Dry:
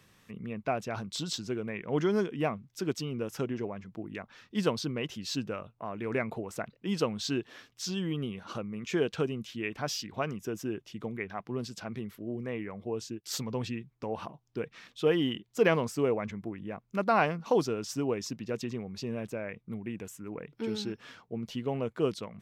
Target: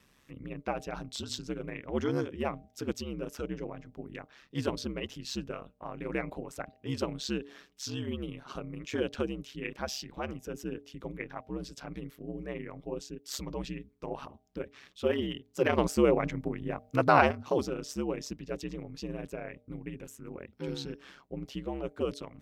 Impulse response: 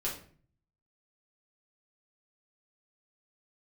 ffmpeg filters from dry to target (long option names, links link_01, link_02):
-filter_complex "[0:a]bandreject=frequency=176.6:width_type=h:width=4,bandreject=frequency=353.2:width_type=h:width=4,bandreject=frequency=529.8:width_type=h:width=4,bandreject=frequency=706.4:width_type=h:width=4,aeval=exprs='val(0)*sin(2*PI*68*n/s)':channel_layout=same,asettb=1/sr,asplit=3[link_01][link_02][link_03];[link_01]atrim=end=15.784[link_04];[link_02]atrim=start=15.78:end=17.31,asetpts=PTS-STARTPTS,afade=type=in:duration=0.004:curve=qsin,afade=type=out:start_time=1.526:duration=0.004:curve=qsin,acontrast=78[link_05];[link_03]atrim=start=17.306[link_06];[link_04][link_05]acrossfade=duration=0.004:curve1=hsin:curve2=qsin[link_07];[link_07][link_06]acrossfade=duration=0.004:curve1=qsin:curve2=hsin"